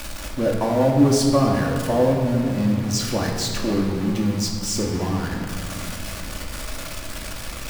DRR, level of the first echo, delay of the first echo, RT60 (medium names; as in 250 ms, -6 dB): -1.5 dB, no echo, no echo, 2.1 s